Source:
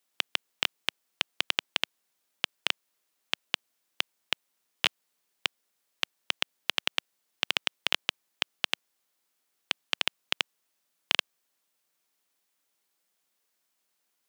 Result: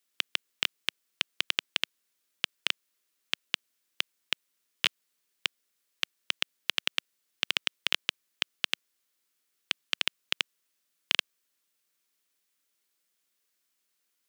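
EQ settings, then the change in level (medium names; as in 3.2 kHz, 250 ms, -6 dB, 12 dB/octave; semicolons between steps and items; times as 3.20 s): bass shelf 200 Hz -5 dB; peaking EQ 780 Hz -8.5 dB 0.95 oct; 0.0 dB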